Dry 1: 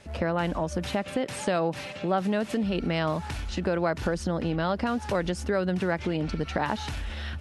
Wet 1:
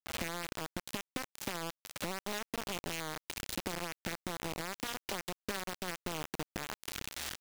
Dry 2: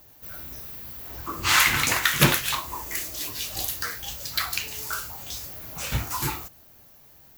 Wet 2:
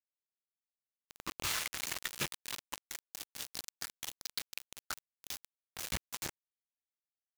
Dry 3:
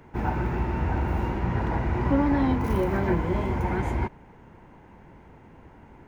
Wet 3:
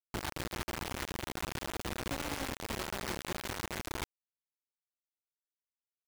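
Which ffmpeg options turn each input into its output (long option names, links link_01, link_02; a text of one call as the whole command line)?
ffmpeg -i in.wav -af "equalizer=frequency=320:width_type=o:width=0.44:gain=4.5,acompressor=threshold=-37dB:ratio=8,aresample=16000,asoftclip=type=tanh:threshold=-32.5dB,aresample=44100,acrusher=bits=5:mix=0:aa=0.000001,adynamicequalizer=threshold=0.002:dfrequency=1600:dqfactor=0.7:tfrequency=1600:tqfactor=0.7:attack=5:release=100:ratio=0.375:range=2:mode=boostabove:tftype=highshelf,volume=1dB" out.wav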